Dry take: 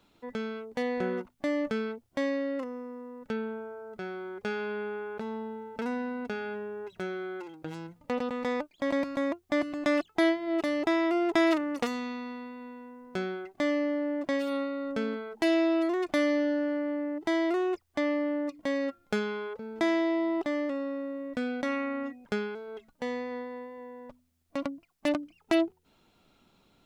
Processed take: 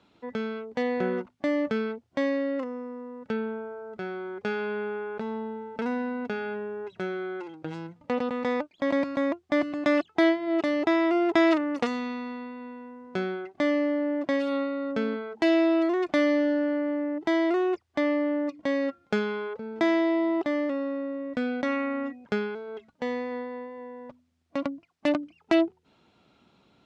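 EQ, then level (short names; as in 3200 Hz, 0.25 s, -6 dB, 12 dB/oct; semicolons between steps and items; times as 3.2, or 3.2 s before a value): HPF 77 Hz; air absorption 91 m; +3.5 dB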